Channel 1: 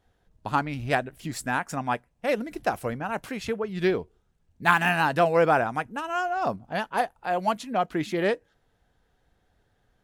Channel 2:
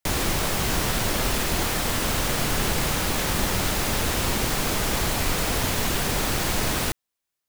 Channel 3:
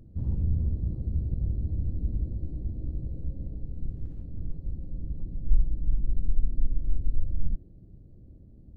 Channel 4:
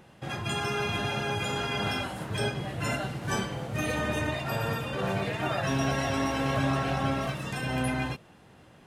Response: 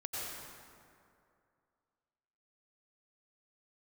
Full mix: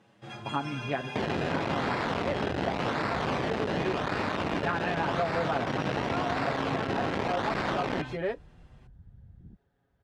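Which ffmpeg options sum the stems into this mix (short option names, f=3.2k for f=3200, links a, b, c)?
-filter_complex "[0:a]highshelf=f=2.7k:g=-11.5,aecho=1:1:7.3:0.82,volume=-6dB[a];[1:a]acrusher=samples=27:mix=1:aa=0.000001:lfo=1:lforange=27:lforate=0.89,bandreject=f=60:t=h:w=6,bandreject=f=120:t=h:w=6,bandreject=f=180:t=h:w=6,bandreject=f=240:t=h:w=6,bandreject=f=300:t=h:w=6,bandreject=f=360:t=h:w=6,bandreject=f=420:t=h:w=6,bandreject=f=480:t=h:w=6,bandreject=f=540:t=h:w=6,acrusher=bits=3:mix=0:aa=0.000001,adelay=1100,volume=-3dB[b];[2:a]afwtdn=0.0398,adelay=2000,volume=-8dB[c];[3:a]asplit=2[d][e];[e]adelay=6.7,afreqshift=0.39[f];[d][f]amix=inputs=2:normalize=1,volume=-4dB[g];[a][b][c][g]amix=inputs=4:normalize=0,acrossover=split=4400[h][i];[i]acompressor=threshold=-52dB:ratio=4:attack=1:release=60[j];[h][j]amix=inputs=2:normalize=0,highpass=120,lowpass=7.6k,acompressor=threshold=-26dB:ratio=3"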